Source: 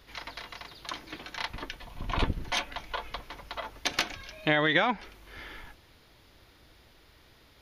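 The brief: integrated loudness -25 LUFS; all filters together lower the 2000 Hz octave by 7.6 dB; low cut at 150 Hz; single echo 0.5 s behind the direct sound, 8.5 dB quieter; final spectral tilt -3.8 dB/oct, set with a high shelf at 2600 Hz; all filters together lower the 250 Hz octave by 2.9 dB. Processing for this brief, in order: HPF 150 Hz; bell 250 Hz -3 dB; bell 2000 Hz -7.5 dB; high shelf 2600 Hz -4 dB; echo 0.5 s -8.5 dB; gain +11 dB

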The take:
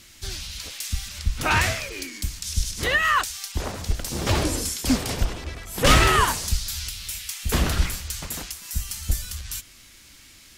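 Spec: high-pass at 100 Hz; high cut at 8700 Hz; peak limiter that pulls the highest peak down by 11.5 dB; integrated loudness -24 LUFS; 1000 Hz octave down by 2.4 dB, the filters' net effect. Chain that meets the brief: HPF 100 Hz; LPF 8700 Hz; bell 1000 Hz -3 dB; gain +6 dB; limiter -12 dBFS

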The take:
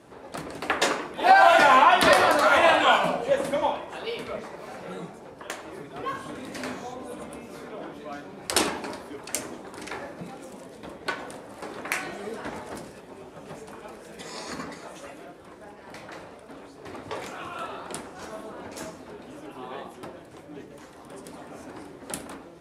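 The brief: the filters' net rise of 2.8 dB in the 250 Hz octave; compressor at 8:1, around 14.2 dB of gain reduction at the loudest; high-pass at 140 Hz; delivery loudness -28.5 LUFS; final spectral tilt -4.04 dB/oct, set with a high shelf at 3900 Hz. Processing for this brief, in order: HPF 140 Hz; bell 250 Hz +4 dB; high shelf 3900 Hz -7.5 dB; compressor 8:1, threshold -26 dBFS; gain +7 dB

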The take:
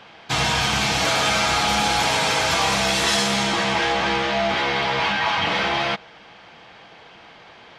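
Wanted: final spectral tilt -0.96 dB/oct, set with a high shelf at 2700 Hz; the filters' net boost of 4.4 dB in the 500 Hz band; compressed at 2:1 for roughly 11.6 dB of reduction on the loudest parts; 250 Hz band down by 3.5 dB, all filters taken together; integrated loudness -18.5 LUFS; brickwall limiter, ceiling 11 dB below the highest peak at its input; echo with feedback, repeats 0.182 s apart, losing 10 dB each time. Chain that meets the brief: bell 250 Hz -7.5 dB; bell 500 Hz +7 dB; high shelf 2700 Hz +8 dB; compressor 2:1, threshold -35 dBFS; limiter -26.5 dBFS; feedback echo 0.182 s, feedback 32%, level -10 dB; gain +15.5 dB

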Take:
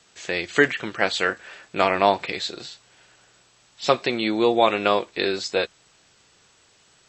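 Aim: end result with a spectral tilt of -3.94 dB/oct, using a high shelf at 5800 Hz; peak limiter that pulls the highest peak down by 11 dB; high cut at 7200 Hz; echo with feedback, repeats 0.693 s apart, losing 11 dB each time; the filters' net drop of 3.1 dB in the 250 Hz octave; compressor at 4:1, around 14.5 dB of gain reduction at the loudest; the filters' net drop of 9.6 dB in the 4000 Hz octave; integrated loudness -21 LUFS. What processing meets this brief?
LPF 7200 Hz; bell 250 Hz -4.5 dB; bell 4000 Hz -9 dB; high shelf 5800 Hz -7 dB; compressor 4:1, threshold -31 dBFS; limiter -25.5 dBFS; feedback echo 0.693 s, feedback 28%, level -11 dB; gain +18.5 dB

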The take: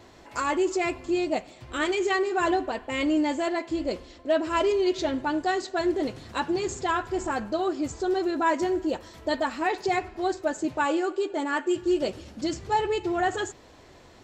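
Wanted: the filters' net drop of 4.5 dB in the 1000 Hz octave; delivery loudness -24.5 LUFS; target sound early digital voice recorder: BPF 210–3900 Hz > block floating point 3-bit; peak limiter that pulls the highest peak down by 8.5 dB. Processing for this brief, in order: bell 1000 Hz -6 dB; limiter -23.5 dBFS; BPF 210–3900 Hz; block floating point 3-bit; gain +8 dB

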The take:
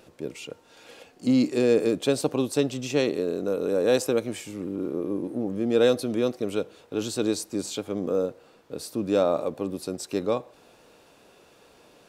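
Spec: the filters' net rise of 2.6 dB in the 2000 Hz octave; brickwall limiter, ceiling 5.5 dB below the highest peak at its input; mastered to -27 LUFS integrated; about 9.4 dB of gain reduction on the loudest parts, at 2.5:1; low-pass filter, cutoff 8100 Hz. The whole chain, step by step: LPF 8100 Hz; bell 2000 Hz +3.5 dB; compressor 2.5:1, threshold -31 dBFS; gain +7.5 dB; limiter -15 dBFS

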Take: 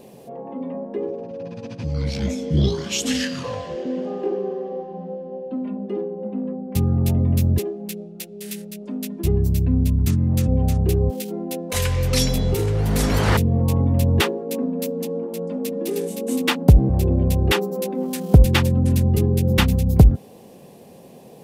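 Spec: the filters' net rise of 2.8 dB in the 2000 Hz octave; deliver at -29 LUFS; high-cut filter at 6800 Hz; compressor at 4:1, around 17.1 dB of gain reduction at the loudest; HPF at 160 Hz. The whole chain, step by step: HPF 160 Hz; LPF 6800 Hz; bell 2000 Hz +3.5 dB; compressor 4:1, threshold -31 dBFS; gain +4.5 dB

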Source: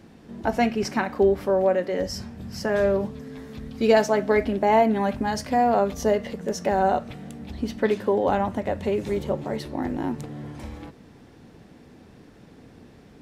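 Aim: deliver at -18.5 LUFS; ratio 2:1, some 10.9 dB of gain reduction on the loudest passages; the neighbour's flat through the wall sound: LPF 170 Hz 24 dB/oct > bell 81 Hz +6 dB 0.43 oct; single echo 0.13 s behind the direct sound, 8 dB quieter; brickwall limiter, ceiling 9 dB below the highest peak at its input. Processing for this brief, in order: compressor 2:1, threshold -34 dBFS; limiter -26 dBFS; LPF 170 Hz 24 dB/oct; bell 81 Hz +6 dB 0.43 oct; echo 0.13 s -8 dB; gain +26.5 dB

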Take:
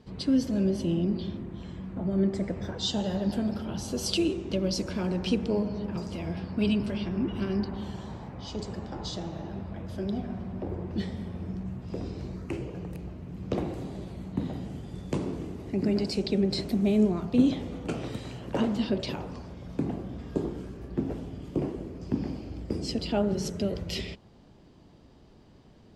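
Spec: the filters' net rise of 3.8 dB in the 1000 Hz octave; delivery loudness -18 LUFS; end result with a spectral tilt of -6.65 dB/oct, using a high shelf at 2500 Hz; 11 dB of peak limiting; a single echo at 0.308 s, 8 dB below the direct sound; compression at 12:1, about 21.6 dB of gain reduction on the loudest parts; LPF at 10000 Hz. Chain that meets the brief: LPF 10000 Hz; bell 1000 Hz +6 dB; high shelf 2500 Hz -6 dB; compressor 12:1, threshold -38 dBFS; limiter -35 dBFS; echo 0.308 s -8 dB; gain +25.5 dB

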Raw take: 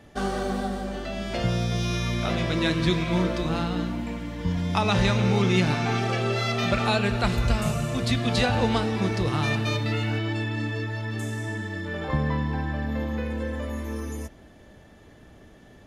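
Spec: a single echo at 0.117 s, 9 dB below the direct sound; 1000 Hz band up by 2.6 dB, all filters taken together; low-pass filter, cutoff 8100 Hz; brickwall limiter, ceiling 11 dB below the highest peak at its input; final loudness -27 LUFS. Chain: LPF 8100 Hz; bell 1000 Hz +3.5 dB; limiter -19 dBFS; echo 0.117 s -9 dB; gain +1 dB

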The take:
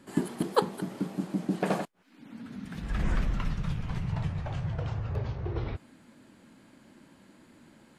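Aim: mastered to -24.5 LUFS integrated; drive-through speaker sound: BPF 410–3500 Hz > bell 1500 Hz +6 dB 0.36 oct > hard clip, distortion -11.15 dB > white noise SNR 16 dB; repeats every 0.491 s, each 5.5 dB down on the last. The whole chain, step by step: BPF 410–3500 Hz; bell 1500 Hz +6 dB 0.36 oct; feedback echo 0.491 s, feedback 53%, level -5.5 dB; hard clip -21 dBFS; white noise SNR 16 dB; gain +14 dB

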